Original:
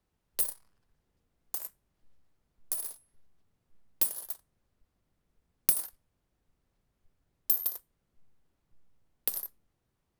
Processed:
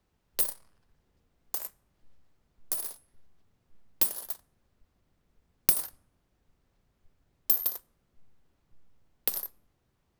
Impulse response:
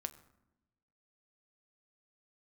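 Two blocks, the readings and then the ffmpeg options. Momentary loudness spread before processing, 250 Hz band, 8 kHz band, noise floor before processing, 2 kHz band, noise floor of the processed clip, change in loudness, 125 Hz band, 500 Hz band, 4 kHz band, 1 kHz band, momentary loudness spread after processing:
16 LU, +5.0 dB, +0.5 dB, -80 dBFS, +5.0 dB, -75 dBFS, +2.0 dB, +5.0 dB, +5.0 dB, +4.5 dB, +5.0 dB, 16 LU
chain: -filter_complex "[0:a]asplit=2[a][b];[b]lowpass=f=11k:w=0.5412,lowpass=f=11k:w=1.3066[c];[1:a]atrim=start_sample=2205[d];[c][d]afir=irnorm=-1:irlink=0,volume=-6.5dB[e];[a][e]amix=inputs=2:normalize=0,volume=2.5dB"

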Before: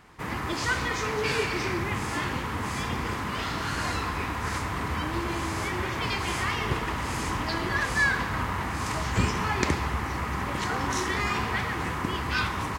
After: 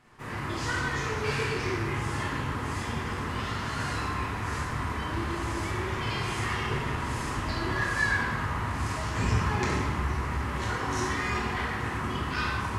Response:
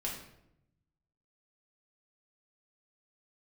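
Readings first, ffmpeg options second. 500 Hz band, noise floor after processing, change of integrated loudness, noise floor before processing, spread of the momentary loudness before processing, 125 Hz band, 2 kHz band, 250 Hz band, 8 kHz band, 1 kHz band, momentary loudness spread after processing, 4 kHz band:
-2.0 dB, -34 dBFS, -1.5 dB, -32 dBFS, 4 LU, +1.0 dB, -2.0 dB, -1.5 dB, -3.5 dB, -2.0 dB, 5 LU, -3.5 dB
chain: -filter_complex "[1:a]atrim=start_sample=2205,asetrate=24696,aresample=44100[a];[0:a][a]afir=irnorm=-1:irlink=0,volume=-8.5dB"

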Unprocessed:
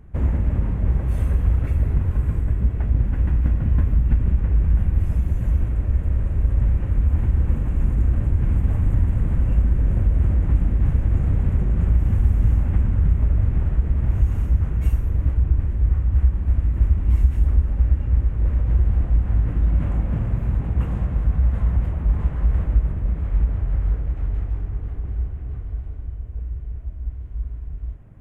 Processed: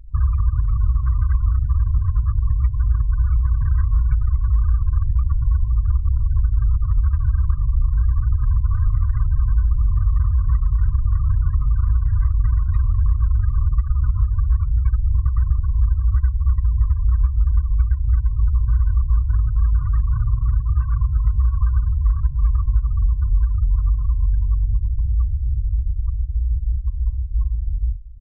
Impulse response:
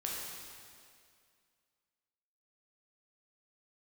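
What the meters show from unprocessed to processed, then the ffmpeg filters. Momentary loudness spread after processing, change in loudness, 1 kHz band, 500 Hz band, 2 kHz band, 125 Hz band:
3 LU, +1.0 dB, +1.5 dB, under -30 dB, -3.5 dB, +1.0 dB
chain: -filter_complex "[0:a]anlmdn=25.1,asplit=2[a][b];[b]aeval=exprs='(mod(11.9*val(0)+1,2)-1)/11.9':c=same,volume=-10.5dB[c];[a][c]amix=inputs=2:normalize=0,lowshelf=f=130:g=4,asplit=2[d][e];[e]adelay=227,lowpass=f=860:p=1,volume=-18dB,asplit=2[f][g];[g]adelay=227,lowpass=f=860:p=1,volume=0.23[h];[d][f][h]amix=inputs=3:normalize=0,afftfilt=real='re*gte(hypot(re,im),0.0251)':imag='im*gte(hypot(re,im),0.0251)':win_size=1024:overlap=0.75,bandreject=f=352.8:t=h:w=4,bandreject=f=705.6:t=h:w=4,bandreject=f=1.0584k:t=h:w=4,bandreject=f=1.4112k:t=h:w=4,bandreject=f=1.764k:t=h:w=4,bandreject=f=2.1168k:t=h:w=4,bandreject=f=2.4696k:t=h:w=4,bandreject=f=2.8224k:t=h:w=4,bandreject=f=3.1752k:t=h:w=4,bandreject=f=3.528k:t=h:w=4,bandreject=f=3.8808k:t=h:w=4,bandreject=f=4.2336k:t=h:w=4,bandreject=f=4.5864k:t=h:w=4,bandreject=f=4.9392k:t=h:w=4,bandreject=f=5.292k:t=h:w=4,bandreject=f=5.6448k:t=h:w=4,bandreject=f=5.9976k:t=h:w=4,bandreject=f=6.3504k:t=h:w=4,bandreject=f=6.7032k:t=h:w=4,bandreject=f=7.056k:t=h:w=4,acompressor=threshold=-17dB:ratio=6,equalizer=f=1k:t=o:w=2.4:g=10,afftfilt=real='re*(1-between(b*sr/4096,160,960))':imag='im*(1-between(b*sr/4096,160,960))':win_size=4096:overlap=0.75,aecho=1:1:2.6:0.72"

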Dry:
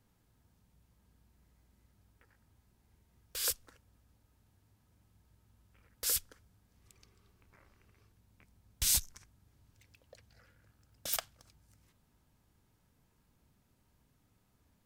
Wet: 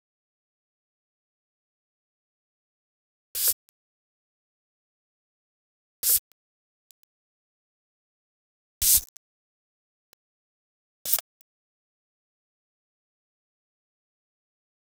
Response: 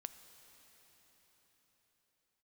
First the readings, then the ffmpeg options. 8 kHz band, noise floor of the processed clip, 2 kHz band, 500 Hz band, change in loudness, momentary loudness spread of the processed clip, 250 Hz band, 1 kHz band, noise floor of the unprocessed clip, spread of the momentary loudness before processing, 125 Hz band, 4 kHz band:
+9.0 dB, under -85 dBFS, +1.5 dB, 0.0 dB, +10.0 dB, 13 LU, n/a, +0.5 dB, -73 dBFS, 14 LU, -0.5 dB, +5.0 dB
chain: -af "aeval=exprs='val(0)*gte(abs(val(0)),0.00668)':c=same,crystalizer=i=2:c=0"

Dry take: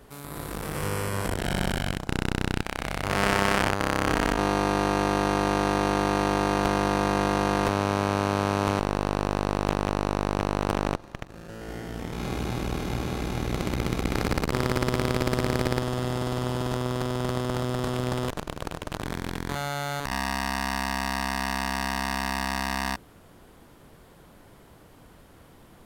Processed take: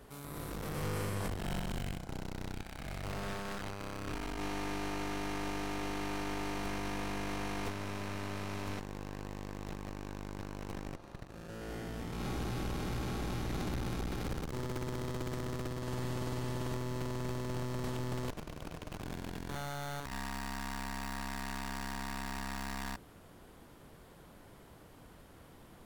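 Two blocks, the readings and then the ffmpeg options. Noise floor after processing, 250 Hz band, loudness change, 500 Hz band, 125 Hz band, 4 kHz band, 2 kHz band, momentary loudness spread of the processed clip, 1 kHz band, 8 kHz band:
-56 dBFS, -12.0 dB, -12.5 dB, -14.0 dB, -10.0 dB, -12.5 dB, -13.0 dB, 12 LU, -14.5 dB, -10.5 dB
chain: -af "alimiter=limit=-11.5dB:level=0:latency=1:release=147,aeval=exprs='(tanh(20*val(0)+0.4)-tanh(0.4))/20':c=same,volume=-2.5dB"

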